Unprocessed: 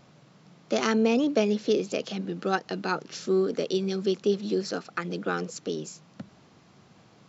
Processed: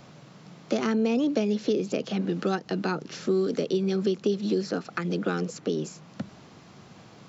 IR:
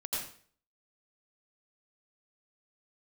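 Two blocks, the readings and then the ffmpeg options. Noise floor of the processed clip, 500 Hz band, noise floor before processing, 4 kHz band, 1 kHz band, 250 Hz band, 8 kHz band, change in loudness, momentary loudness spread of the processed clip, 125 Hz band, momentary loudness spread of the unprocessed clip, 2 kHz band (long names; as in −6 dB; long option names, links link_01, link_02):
−51 dBFS, −0.5 dB, −57 dBFS, −2.5 dB, −3.0 dB, +1.5 dB, can't be measured, 0.0 dB, 7 LU, +3.5 dB, 11 LU, −3.0 dB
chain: -filter_complex "[0:a]acrossover=split=340|2600[link_01][link_02][link_03];[link_01]acompressor=threshold=-32dB:ratio=4[link_04];[link_02]acompressor=threshold=-37dB:ratio=4[link_05];[link_03]acompressor=threshold=-50dB:ratio=4[link_06];[link_04][link_05][link_06]amix=inputs=3:normalize=0,volume=6.5dB"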